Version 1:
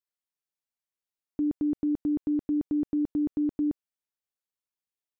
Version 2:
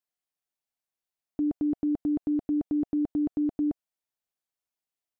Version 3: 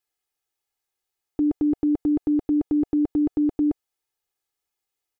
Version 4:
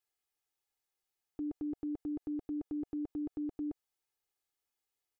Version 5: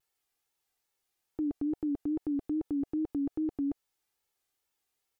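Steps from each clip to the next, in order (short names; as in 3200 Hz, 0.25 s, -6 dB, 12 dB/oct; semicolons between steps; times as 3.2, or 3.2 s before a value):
bell 700 Hz +6.5 dB 0.36 oct
comb 2.4 ms, depth 72%; gain +5 dB
limiter -28 dBFS, peak gain reduction 11.5 dB; gain -5 dB
vibrato 2.4 Hz 97 cents; gain +6 dB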